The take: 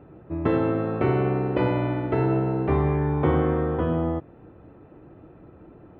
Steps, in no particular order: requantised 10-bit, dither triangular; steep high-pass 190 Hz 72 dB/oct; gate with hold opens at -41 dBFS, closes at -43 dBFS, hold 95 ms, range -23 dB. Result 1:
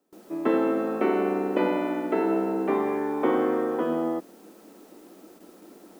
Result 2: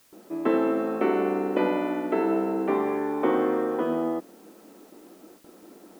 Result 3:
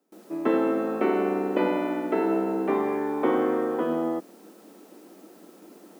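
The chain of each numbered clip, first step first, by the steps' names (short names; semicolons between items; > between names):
steep high-pass > requantised > gate with hold; steep high-pass > gate with hold > requantised; requantised > steep high-pass > gate with hold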